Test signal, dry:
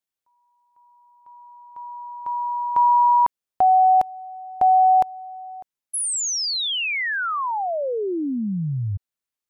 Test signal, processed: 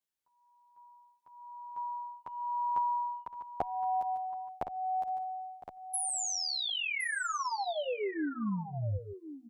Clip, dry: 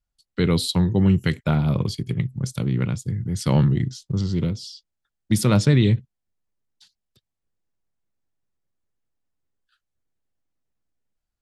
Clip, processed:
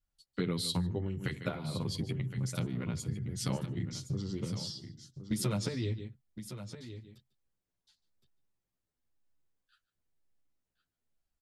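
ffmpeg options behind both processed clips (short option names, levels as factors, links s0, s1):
-filter_complex "[0:a]asplit=2[s0][s1];[s1]aecho=0:1:147:0.1[s2];[s0][s2]amix=inputs=2:normalize=0,acompressor=threshold=0.0224:ratio=5:attack=37:release=69:knee=6:detection=peak,asplit=2[s3][s4];[s4]aecho=0:1:1065:0.266[s5];[s3][s5]amix=inputs=2:normalize=0,asplit=2[s6][s7];[s7]adelay=10.2,afreqshift=-0.98[s8];[s6][s8]amix=inputs=2:normalize=1"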